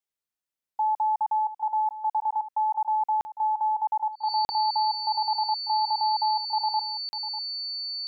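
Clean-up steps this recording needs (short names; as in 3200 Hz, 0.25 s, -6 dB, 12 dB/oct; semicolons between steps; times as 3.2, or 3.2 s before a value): notch 4500 Hz, Q 30; interpolate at 3.21/4.45/7.09, 40 ms; inverse comb 0.596 s -13.5 dB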